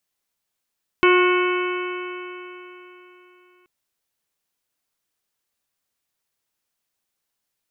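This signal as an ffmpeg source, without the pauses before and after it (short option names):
-f lavfi -i "aevalsrc='0.224*pow(10,-3*t/3.52)*sin(2*PI*359.31*t)+0.0251*pow(10,-3*t/3.52)*sin(2*PI*720.44*t)+0.126*pow(10,-3*t/3.52)*sin(2*PI*1085.21*t)+0.0841*pow(10,-3*t/3.52)*sin(2*PI*1455.4*t)+0.0266*pow(10,-3*t/3.52)*sin(2*PI*1832.75*t)+0.1*pow(10,-3*t/3.52)*sin(2*PI*2218.93*t)+0.0708*pow(10,-3*t/3.52)*sin(2*PI*2615.57*t)+0.0422*pow(10,-3*t/3.52)*sin(2*PI*3024.2*t)':d=2.63:s=44100"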